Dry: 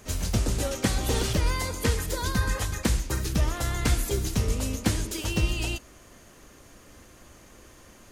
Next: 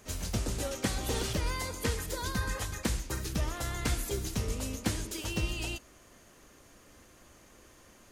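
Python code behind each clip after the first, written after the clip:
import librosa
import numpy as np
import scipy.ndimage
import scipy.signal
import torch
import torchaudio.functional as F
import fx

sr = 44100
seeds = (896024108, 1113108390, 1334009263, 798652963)

y = fx.low_shelf(x, sr, hz=180.0, db=-3.5)
y = y * librosa.db_to_amplitude(-5.0)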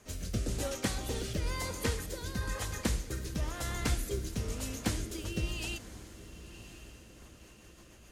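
y = fx.rotary_switch(x, sr, hz=1.0, then_hz=7.5, switch_at_s=6.85)
y = fx.echo_diffused(y, sr, ms=1064, feedback_pct=46, wet_db=-14.5)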